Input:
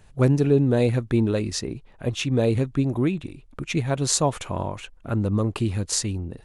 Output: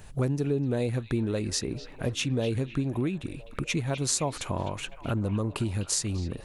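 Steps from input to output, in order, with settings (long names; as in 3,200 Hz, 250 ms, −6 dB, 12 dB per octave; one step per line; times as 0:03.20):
high-shelf EQ 8,500 Hz +7 dB
downward compressor 3 to 1, threshold −34 dBFS, peak gain reduction 15 dB
on a send: echo through a band-pass that steps 253 ms, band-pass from 3,100 Hz, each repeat −0.7 octaves, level −9.5 dB
on the sum: level +5 dB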